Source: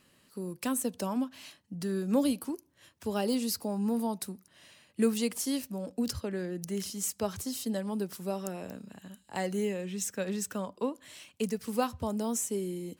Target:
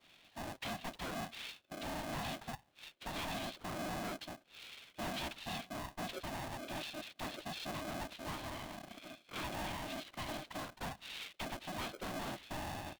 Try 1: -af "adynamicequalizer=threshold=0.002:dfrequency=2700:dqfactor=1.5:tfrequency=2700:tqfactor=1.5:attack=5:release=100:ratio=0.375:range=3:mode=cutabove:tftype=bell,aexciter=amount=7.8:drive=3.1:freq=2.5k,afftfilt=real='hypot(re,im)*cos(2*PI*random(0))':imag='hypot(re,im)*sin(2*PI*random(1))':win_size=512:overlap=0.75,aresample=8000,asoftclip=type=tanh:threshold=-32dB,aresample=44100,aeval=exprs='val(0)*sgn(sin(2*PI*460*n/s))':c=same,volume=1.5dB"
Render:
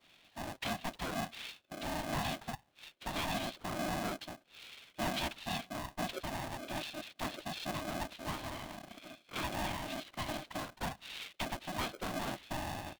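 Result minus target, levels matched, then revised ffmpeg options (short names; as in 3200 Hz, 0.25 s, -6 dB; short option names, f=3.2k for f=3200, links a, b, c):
soft clip: distortion -6 dB
-af "adynamicequalizer=threshold=0.002:dfrequency=2700:dqfactor=1.5:tfrequency=2700:tqfactor=1.5:attack=5:release=100:ratio=0.375:range=3:mode=cutabove:tftype=bell,aexciter=amount=7.8:drive=3.1:freq=2.5k,afftfilt=real='hypot(re,im)*cos(2*PI*random(0))':imag='hypot(re,im)*sin(2*PI*random(1))':win_size=512:overlap=0.75,aresample=8000,asoftclip=type=tanh:threshold=-39.5dB,aresample=44100,aeval=exprs='val(0)*sgn(sin(2*PI*460*n/s))':c=same,volume=1.5dB"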